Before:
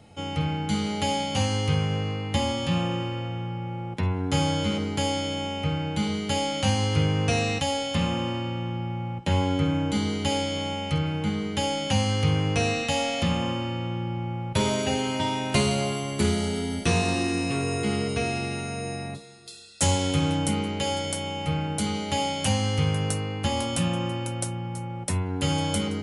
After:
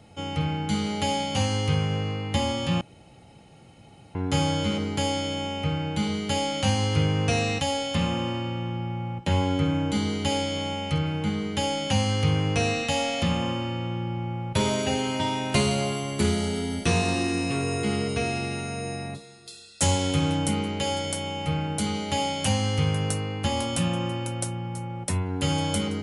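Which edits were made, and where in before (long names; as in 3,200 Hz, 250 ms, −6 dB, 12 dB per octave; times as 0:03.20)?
0:02.81–0:04.15: fill with room tone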